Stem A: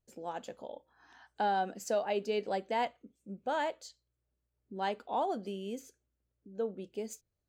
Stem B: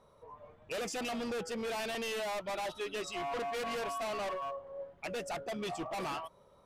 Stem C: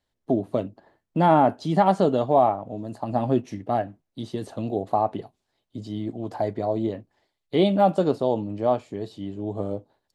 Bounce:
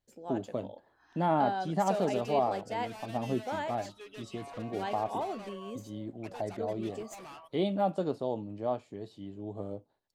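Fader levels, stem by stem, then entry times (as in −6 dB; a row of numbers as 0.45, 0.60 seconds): −3.0, −10.0, −10.0 decibels; 0.00, 1.20, 0.00 seconds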